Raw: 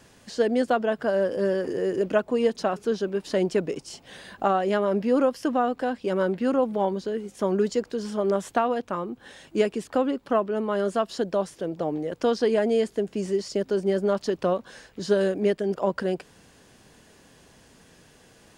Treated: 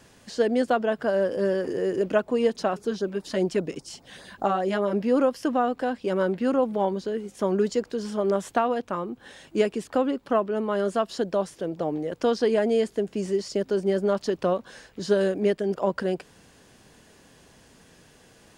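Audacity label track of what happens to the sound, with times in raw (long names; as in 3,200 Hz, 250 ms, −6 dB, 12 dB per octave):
2.780000	4.930000	auto-filter notch sine 5 Hz 380–3,000 Hz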